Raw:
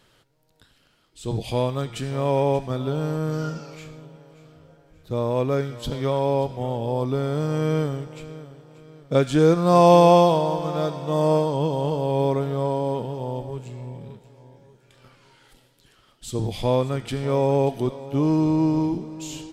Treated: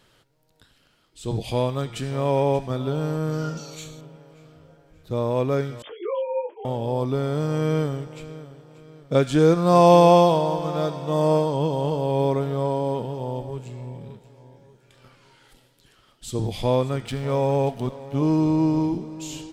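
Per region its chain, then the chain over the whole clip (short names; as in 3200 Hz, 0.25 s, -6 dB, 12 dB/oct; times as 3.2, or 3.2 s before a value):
3.57–4.01 Butterworth band-stop 5000 Hz, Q 5 + resonant high shelf 3100 Hz +10 dB, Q 1.5
5.82–6.65 sine-wave speech + notch comb 190 Hz + detuned doubles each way 21 cents
17.07–18.22 bell 340 Hz -14 dB 0.26 oct + backlash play -43.5 dBFS
whole clip: dry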